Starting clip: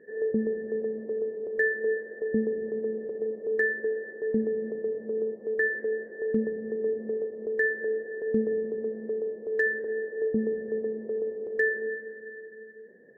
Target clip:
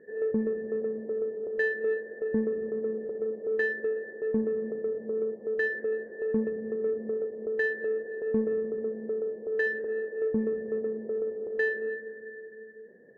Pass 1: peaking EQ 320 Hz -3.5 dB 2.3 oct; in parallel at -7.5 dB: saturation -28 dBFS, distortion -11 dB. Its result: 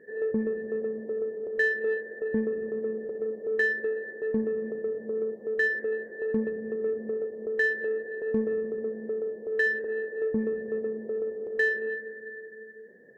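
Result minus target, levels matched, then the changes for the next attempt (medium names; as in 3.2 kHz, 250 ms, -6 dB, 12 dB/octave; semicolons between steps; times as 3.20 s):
2 kHz band +3.5 dB
add first: low-pass 1.5 kHz 12 dB/octave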